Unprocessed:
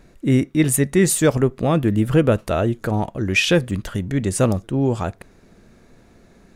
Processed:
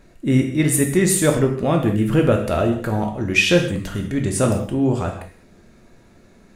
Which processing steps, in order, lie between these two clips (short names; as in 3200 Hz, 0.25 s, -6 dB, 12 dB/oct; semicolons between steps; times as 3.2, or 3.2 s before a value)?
non-linear reverb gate 0.23 s falling, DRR 1.5 dB; gain -1.5 dB